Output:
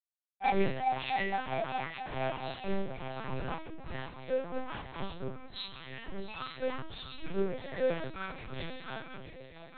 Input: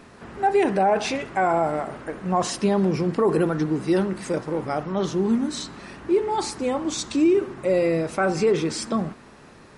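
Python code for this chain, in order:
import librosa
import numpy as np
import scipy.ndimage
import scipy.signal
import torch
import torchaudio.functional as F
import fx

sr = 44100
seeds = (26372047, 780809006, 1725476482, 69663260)

p1 = fx.frame_reverse(x, sr, frame_ms=81.0)
p2 = fx.recorder_agc(p1, sr, target_db=-19.0, rise_db_per_s=18.0, max_gain_db=30)
p3 = scipy.signal.sosfilt(scipy.signal.butter(2, 670.0, 'highpass', fs=sr, output='sos'), p2)
p4 = fx.noise_reduce_blind(p3, sr, reduce_db=28)
p5 = p4 + fx.echo_swing(p4, sr, ms=887, ratio=3, feedback_pct=45, wet_db=-10.0, dry=0)
p6 = fx.level_steps(p5, sr, step_db=12)
p7 = fx.fuzz(p6, sr, gain_db=45.0, gate_db=-54.0)
p8 = fx.resonator_bank(p7, sr, root=60, chord='major', decay_s=0.41)
p9 = fx.lpc_vocoder(p8, sr, seeds[0], excitation='pitch_kept', order=8)
y = fx.band_widen(p9, sr, depth_pct=70)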